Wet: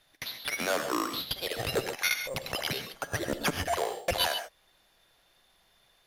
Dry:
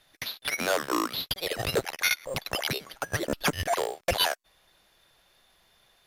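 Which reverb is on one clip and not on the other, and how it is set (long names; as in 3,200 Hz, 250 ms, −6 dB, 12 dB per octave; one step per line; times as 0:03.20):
reverb whose tail is shaped and stops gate 160 ms rising, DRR 7.5 dB
level −3 dB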